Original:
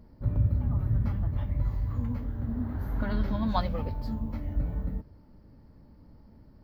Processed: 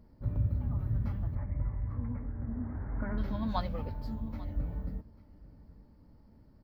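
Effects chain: 1.35–3.18 steep low-pass 2300 Hz 72 dB/oct; echo 0.842 s -20.5 dB; gain -5 dB

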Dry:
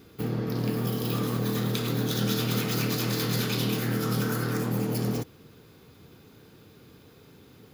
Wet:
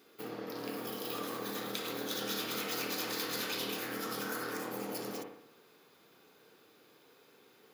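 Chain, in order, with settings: HPF 430 Hz 12 dB/oct; analogue delay 60 ms, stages 1024, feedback 56%, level -5.5 dB; gain -5.5 dB

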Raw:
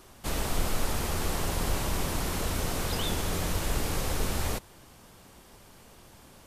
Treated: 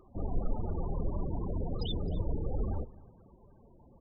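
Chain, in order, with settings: loudest bins only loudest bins 16; echo 0.421 s -20 dB; time stretch by phase-locked vocoder 0.62×

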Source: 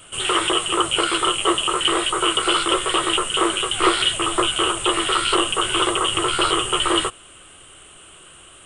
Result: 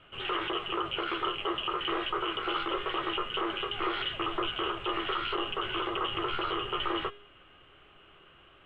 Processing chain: LPF 2900 Hz 24 dB/oct; limiter -13 dBFS, peak gain reduction 7.5 dB; resonator 410 Hz, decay 0.61 s, mix 70%; gain +1 dB

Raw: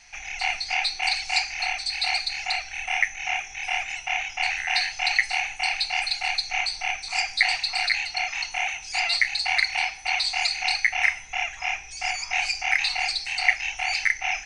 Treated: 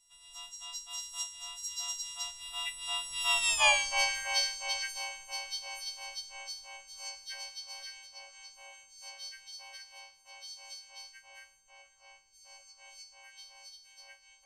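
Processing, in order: frequency quantiser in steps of 6 st; Doppler pass-by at 3.62, 40 m/s, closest 7.1 m; bell 1800 Hz -14 dB 1.5 oct; harmoniser +3 st -10 dB, +5 st -8 dB; gain +3 dB

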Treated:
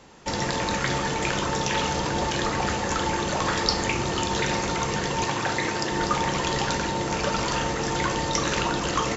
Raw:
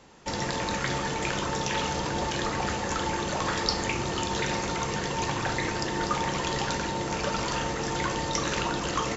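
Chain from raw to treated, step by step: 5.24–5.91 HPF 150 Hz 6 dB/oct; gain +3.5 dB

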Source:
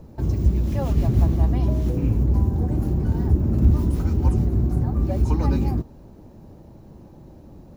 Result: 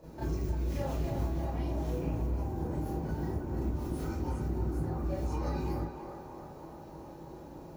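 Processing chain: HPF 68 Hz; bell 120 Hz -14.5 dB 1.9 oct; compressor 10:1, threshold -35 dBFS, peak gain reduction 14 dB; narrowing echo 0.316 s, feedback 75%, band-pass 910 Hz, level -5 dB; reverb RT60 0.35 s, pre-delay 23 ms, DRR -8 dB; gain -5.5 dB

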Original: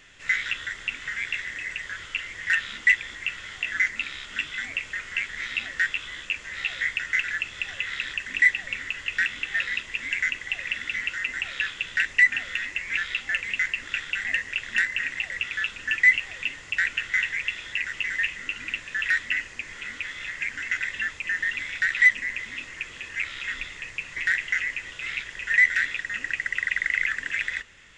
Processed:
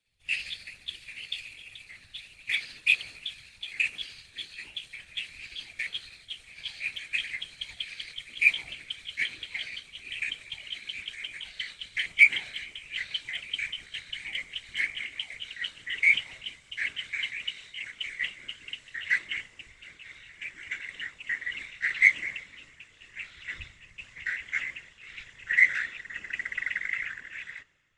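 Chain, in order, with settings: gliding pitch shift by +4.5 st ending unshifted; whisperiser; three-band expander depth 70%; gain -6 dB

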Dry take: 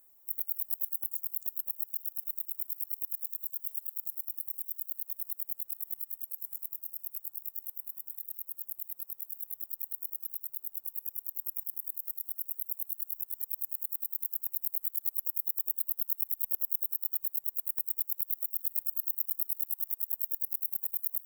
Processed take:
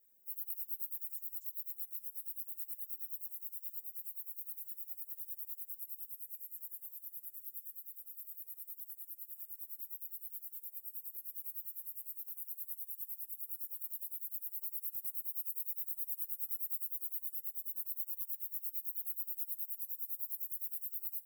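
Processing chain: phase scrambler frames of 50 ms; ring modulator 160 Hz; Chebyshev band-stop 710–1500 Hz, order 4; on a send: delay with a stepping band-pass 0.216 s, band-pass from 400 Hz, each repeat 1.4 oct, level -2.5 dB; on the sum: gain -3 dB

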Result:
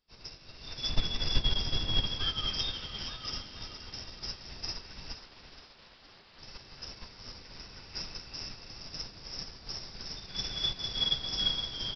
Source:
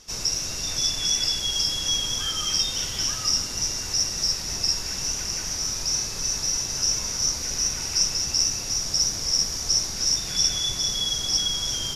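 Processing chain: 0.89–2.07 tilt -2 dB/oct; 5.16–6.39 wrapped overs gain 27.5 dB; on a send: feedback echo 0.469 s, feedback 53%, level -6 dB; on the sum: downsampling 11025 Hz; upward expander 2.5:1, over -42 dBFS; gain +2.5 dB

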